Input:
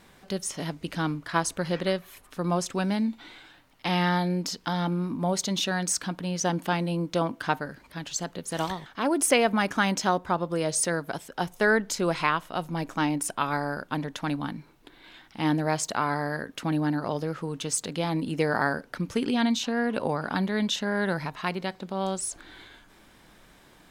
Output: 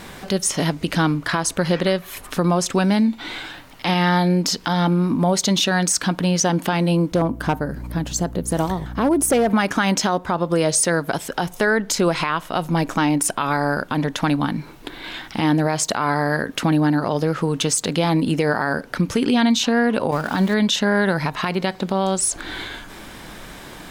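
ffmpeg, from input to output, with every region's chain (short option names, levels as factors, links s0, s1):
-filter_complex "[0:a]asettb=1/sr,asplit=3[s0][s1][s2];[s0]atrim=end=7.124[s3];[s1]atrim=start=7.12:end=9.5,asetpts=PTS-STARTPTS,afade=t=in:d=0.004:c=qsin,afade=t=out:st=2.376:d=0.004:c=qsin,equalizer=f=3200:w=0.36:g=-13,aeval=exprs='val(0)+0.00447*(sin(2*PI*60*n/s)+sin(2*PI*2*60*n/s)/2+sin(2*PI*3*60*n/s)/3+sin(2*PI*4*60*n/s)/4+sin(2*PI*5*60*n/s)/5)':c=same,asoftclip=type=hard:threshold=0.0841[s4];[s2]atrim=start=9.496[s5];[s3][s4]acrossfade=d=0.004:c1=hsin:c2=qsin[s6];[s6][s5]acrossfade=d=0.004:c1=qsin:c2=hsin,asettb=1/sr,asplit=3[s7][s8][s9];[s7]atrim=end=20.114[s10];[s8]atrim=start=20.11:end=20.54,asetpts=PTS-STARTPTS,afade=t=in:d=0.004:c=qsin,afade=t=out:st=0.426:d=0.004:c=qsin,aeval=exprs='val(0)+0.5*0.0141*sgn(val(0))':c=same,agate=range=0.0224:threshold=0.0501:ratio=3:release=100:detection=peak[s11];[s9]atrim=start=20.536[s12];[s10][s11]acrossfade=d=0.004:c1=hsin:c2=qsin[s13];[s13][s12]acrossfade=d=0.004:c1=qsin:c2=hsin,acompressor=threshold=0.0112:ratio=2,alimiter=level_in=18.8:limit=0.891:release=50:level=0:latency=1,volume=0.398"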